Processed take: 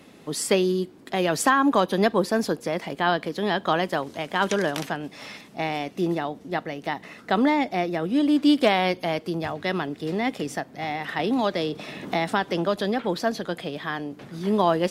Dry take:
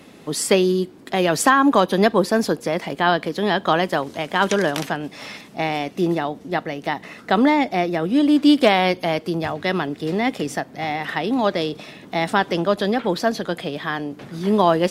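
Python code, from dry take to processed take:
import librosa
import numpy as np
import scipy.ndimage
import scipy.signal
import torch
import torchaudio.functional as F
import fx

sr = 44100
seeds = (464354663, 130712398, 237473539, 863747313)

y = fx.band_squash(x, sr, depth_pct=70, at=(11.19, 12.81))
y = F.gain(torch.from_numpy(y), -4.5).numpy()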